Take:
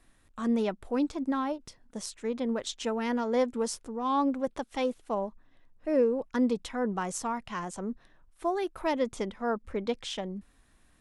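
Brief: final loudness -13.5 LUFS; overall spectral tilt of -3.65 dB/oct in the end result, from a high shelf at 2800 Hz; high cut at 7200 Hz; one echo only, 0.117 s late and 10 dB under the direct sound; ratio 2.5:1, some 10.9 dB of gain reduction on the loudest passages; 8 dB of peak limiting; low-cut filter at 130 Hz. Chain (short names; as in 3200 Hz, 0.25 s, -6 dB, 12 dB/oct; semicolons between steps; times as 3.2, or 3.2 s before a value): HPF 130 Hz; LPF 7200 Hz; high shelf 2800 Hz +8.5 dB; compressor 2.5:1, threshold -38 dBFS; limiter -30 dBFS; echo 0.117 s -10 dB; gain +26 dB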